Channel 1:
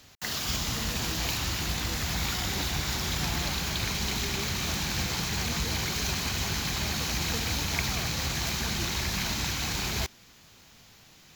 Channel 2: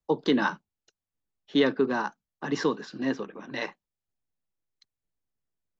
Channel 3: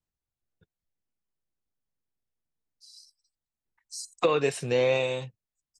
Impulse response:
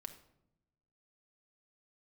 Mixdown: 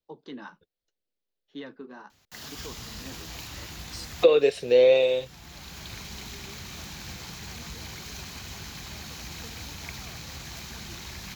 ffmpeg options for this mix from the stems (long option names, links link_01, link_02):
-filter_complex "[0:a]adelay=2100,volume=-10dB[link_01];[1:a]flanger=delay=3.4:depth=9.2:regen=-47:speed=0.78:shape=triangular,volume=-13.5dB[link_02];[2:a]equalizer=frequency=125:width_type=o:width=1:gain=-9,equalizer=frequency=500:width_type=o:width=1:gain=11,equalizer=frequency=1000:width_type=o:width=1:gain=-7,equalizer=frequency=4000:width_type=o:width=1:gain=9,equalizer=frequency=8000:width_type=o:width=1:gain=-9,volume=-2dB,asplit=2[link_03][link_04];[link_04]apad=whole_len=593571[link_05];[link_01][link_05]sidechaincompress=threshold=-31dB:ratio=8:attack=6.5:release=715[link_06];[link_06][link_02][link_03]amix=inputs=3:normalize=0"